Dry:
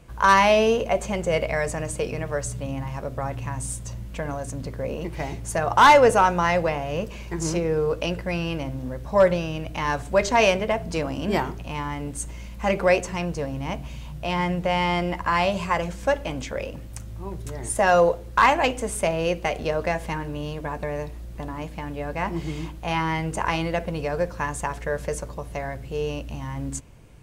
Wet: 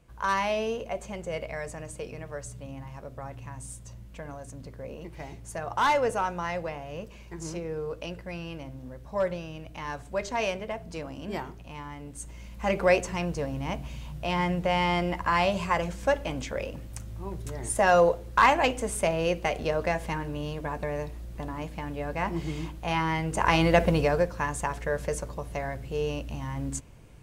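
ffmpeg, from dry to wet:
-af "volume=2.11,afade=t=in:st=12.08:d=0.82:silence=0.398107,afade=t=in:st=23.29:d=0.57:silence=0.354813,afade=t=out:st=23.86:d=0.42:silence=0.375837"

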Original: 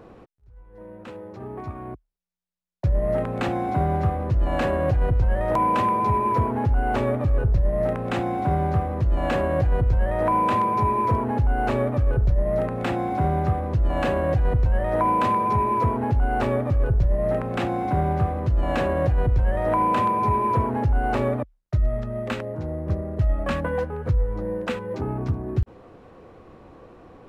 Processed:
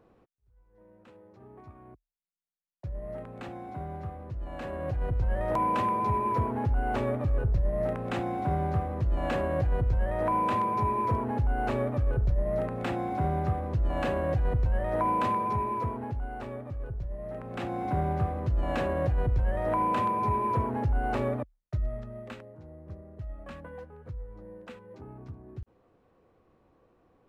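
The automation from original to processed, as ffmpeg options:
-af "volume=1.5,afade=t=in:st=4.58:d=0.83:silence=0.334965,afade=t=out:st=15.27:d=1.11:silence=0.334965,afade=t=in:st=17.32:d=0.57:silence=0.334965,afade=t=out:st=21.38:d=1.14:silence=0.251189"

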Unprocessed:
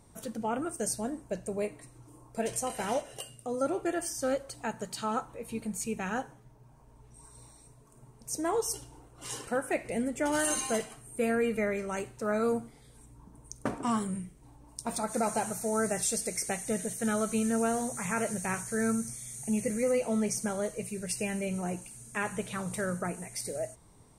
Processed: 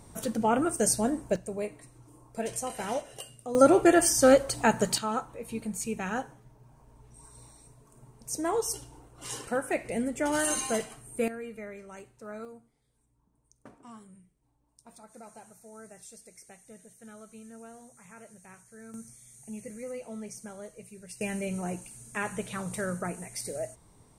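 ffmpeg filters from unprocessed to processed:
-af "asetnsamples=n=441:p=0,asendcmd='1.36 volume volume -1dB;3.55 volume volume 11.5dB;4.98 volume volume 1dB;11.28 volume volume -11.5dB;12.45 volume volume -19dB;18.94 volume volume -11dB;21.21 volume volume 0dB',volume=2.24"

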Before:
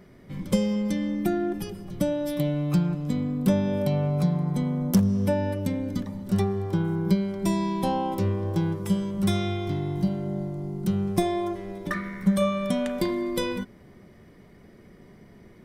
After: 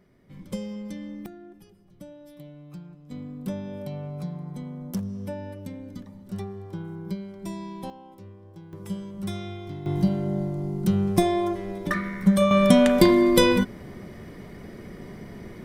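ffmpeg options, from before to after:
-af "asetnsamples=n=441:p=0,asendcmd='1.26 volume volume -19dB;3.11 volume volume -10dB;7.9 volume volume -20dB;8.73 volume volume -8dB;9.86 volume volume 3dB;12.51 volume volume 10dB',volume=0.335"

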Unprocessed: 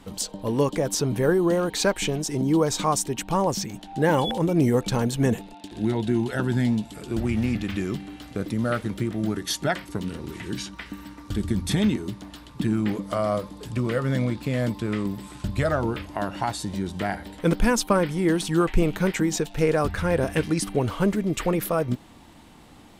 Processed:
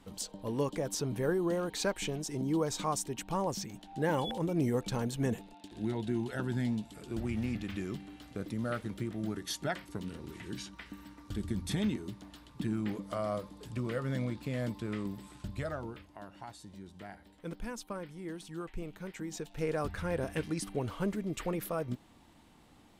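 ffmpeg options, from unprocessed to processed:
-af "volume=0.891,afade=t=out:st=15.15:d=0.97:silence=0.316228,afade=t=in:st=19.09:d=0.71:silence=0.354813"

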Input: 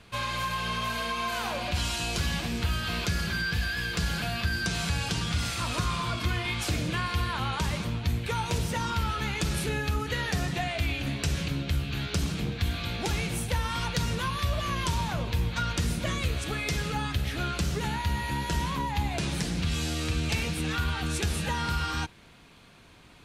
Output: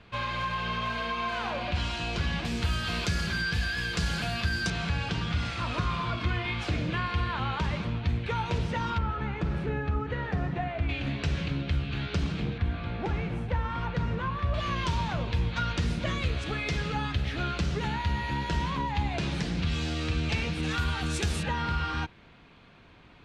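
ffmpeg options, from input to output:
-af "asetnsamples=n=441:p=0,asendcmd='2.45 lowpass f 8400;4.7 lowpass f 3200;8.98 lowpass f 1500;10.89 lowpass f 3400;12.58 lowpass f 1700;14.54 lowpass f 4300;20.63 lowpass f 8400;21.43 lowpass f 3200',lowpass=3400"

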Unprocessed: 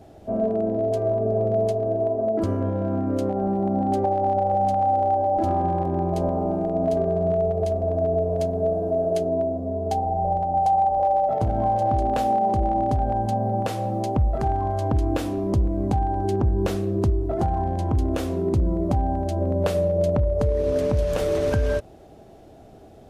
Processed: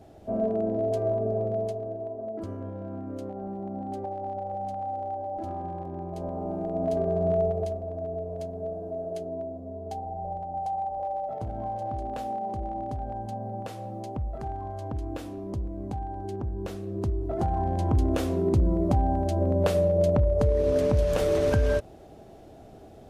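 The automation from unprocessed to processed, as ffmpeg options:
-af "volume=6.68,afade=t=out:st=1.09:d=0.9:silence=0.375837,afade=t=in:st=6.12:d=1.28:silence=0.316228,afade=t=out:st=7.4:d=0.43:silence=0.354813,afade=t=in:st=16.79:d=1.11:silence=0.316228"

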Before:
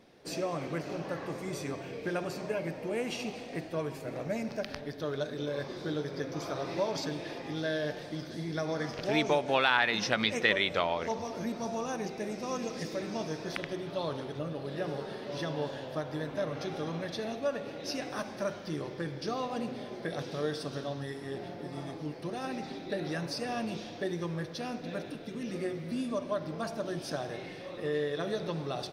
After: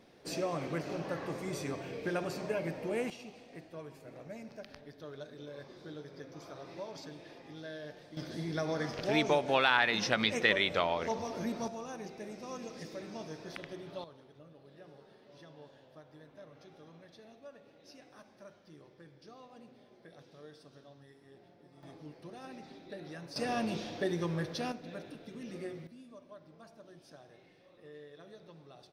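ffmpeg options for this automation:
-af "asetnsamples=n=441:p=0,asendcmd='3.1 volume volume -12dB;8.17 volume volume -1dB;11.68 volume volume -8dB;14.04 volume volume -19.5dB;21.83 volume volume -11dB;23.36 volume volume 1dB;24.72 volume volume -7dB;25.87 volume volume -19.5dB',volume=0.891"

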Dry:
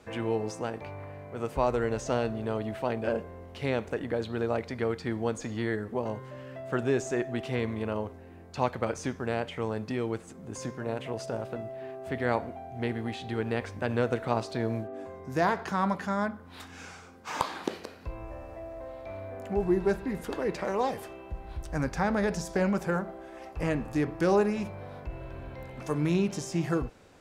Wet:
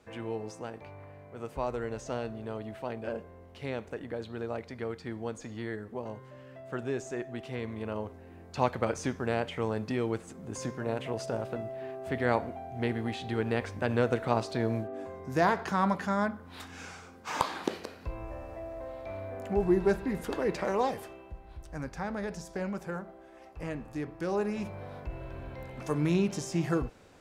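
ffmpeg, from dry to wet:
-af "volume=2.51,afade=t=in:st=7.6:d=1.02:silence=0.446684,afade=t=out:st=20.75:d=0.66:silence=0.375837,afade=t=in:st=24.32:d=0.44:silence=0.421697"

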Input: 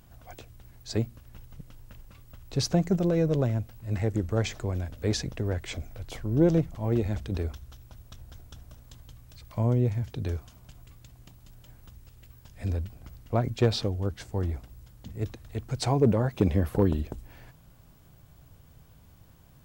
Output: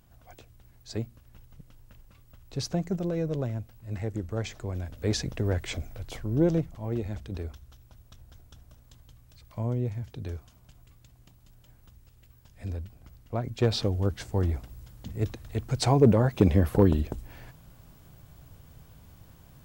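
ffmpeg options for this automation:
-af "volume=3.35,afade=t=in:st=4.55:d=1.01:silence=0.421697,afade=t=out:st=5.56:d=1.3:silence=0.421697,afade=t=in:st=13.46:d=0.52:silence=0.398107"

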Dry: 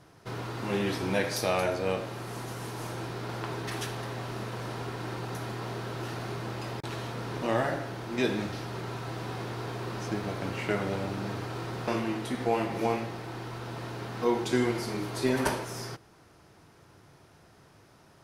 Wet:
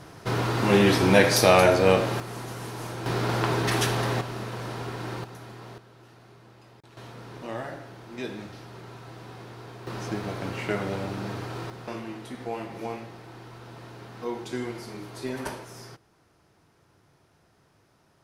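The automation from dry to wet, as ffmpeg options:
-af "asetnsamples=n=441:p=0,asendcmd='2.2 volume volume 1.5dB;3.06 volume volume 10dB;4.21 volume volume 2dB;5.24 volume volume -7dB;5.78 volume volume -16.5dB;6.97 volume volume -7dB;9.87 volume volume 1dB;11.7 volume volume -6dB',volume=3.35"

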